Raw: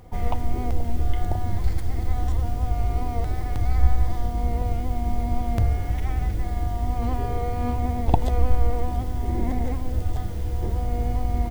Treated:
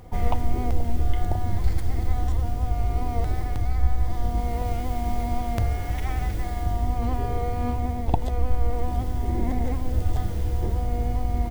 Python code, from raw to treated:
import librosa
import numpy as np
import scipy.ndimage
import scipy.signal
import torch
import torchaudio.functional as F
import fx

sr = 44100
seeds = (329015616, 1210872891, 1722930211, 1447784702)

y = fx.low_shelf(x, sr, hz=470.0, db=-6.0, at=(4.4, 6.66))
y = fx.rider(y, sr, range_db=4, speed_s=0.5)